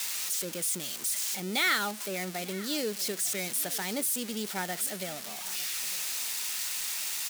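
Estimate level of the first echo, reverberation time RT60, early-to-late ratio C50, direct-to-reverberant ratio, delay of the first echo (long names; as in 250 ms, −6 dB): −19.5 dB, no reverb audible, no reverb audible, no reverb audible, 904 ms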